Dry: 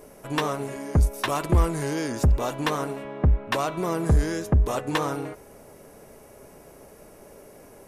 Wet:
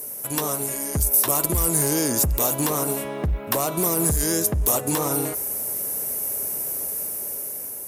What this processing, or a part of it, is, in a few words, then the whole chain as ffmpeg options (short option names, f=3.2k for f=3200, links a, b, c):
FM broadcast chain: -filter_complex "[0:a]highpass=49,dynaudnorm=f=580:g=5:m=7dB,acrossover=split=1200|3000[a][b][c];[a]acompressor=threshold=-17dB:ratio=4[d];[b]acompressor=threshold=-42dB:ratio=4[e];[c]acompressor=threshold=-39dB:ratio=4[f];[d][e][f]amix=inputs=3:normalize=0,aemphasis=mode=production:type=50fm,alimiter=limit=-14.5dB:level=0:latency=1:release=45,asoftclip=type=hard:threshold=-17.5dB,lowpass=f=15k:w=0.5412,lowpass=f=15k:w=1.3066,aemphasis=mode=production:type=50fm"